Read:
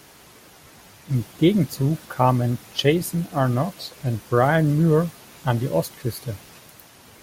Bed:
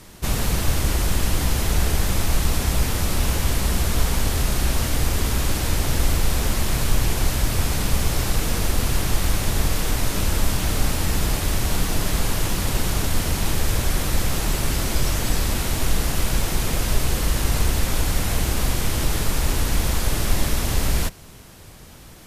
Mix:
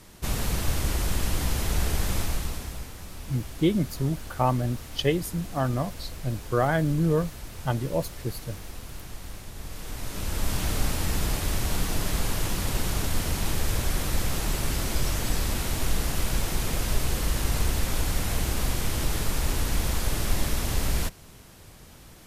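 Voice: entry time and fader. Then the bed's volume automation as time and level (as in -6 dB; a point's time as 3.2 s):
2.20 s, -5.5 dB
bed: 2.19 s -5.5 dB
2.93 s -19 dB
9.54 s -19 dB
10.57 s -5 dB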